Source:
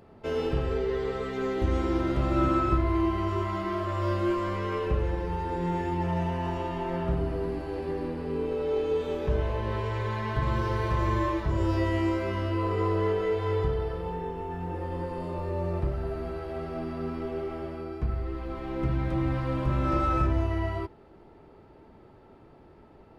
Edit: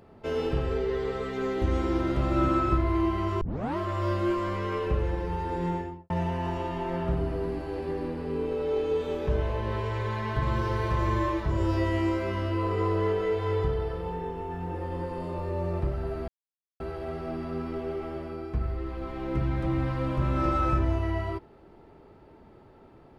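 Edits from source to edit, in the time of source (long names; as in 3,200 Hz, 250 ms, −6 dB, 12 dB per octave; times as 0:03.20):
0:03.41: tape start 0.36 s
0:05.65–0:06.10: fade out and dull
0:16.28: splice in silence 0.52 s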